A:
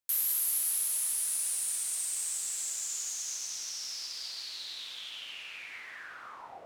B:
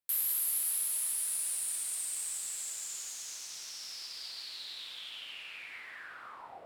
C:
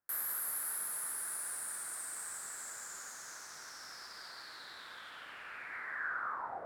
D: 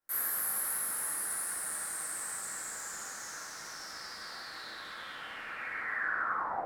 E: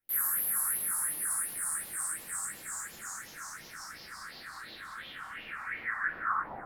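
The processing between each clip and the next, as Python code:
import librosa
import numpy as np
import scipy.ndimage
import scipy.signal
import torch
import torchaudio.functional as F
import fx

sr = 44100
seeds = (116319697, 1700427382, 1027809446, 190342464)

y1 = fx.peak_eq(x, sr, hz=6200.0, db=-7.5, octaves=0.39)
y1 = y1 * 10.0 ** (-1.5 / 20.0)
y2 = fx.high_shelf_res(y1, sr, hz=2100.0, db=-10.5, q=3.0)
y2 = y2 * 10.0 ** (4.5 / 20.0)
y3 = fx.room_shoebox(y2, sr, seeds[0], volume_m3=110.0, walls='mixed', distance_m=2.2)
y3 = y3 * 10.0 ** (-3.0 / 20.0)
y4 = fx.phaser_stages(y3, sr, stages=4, low_hz=440.0, high_hz=1400.0, hz=2.8, feedback_pct=45)
y4 = y4 * 10.0 ** (2.5 / 20.0)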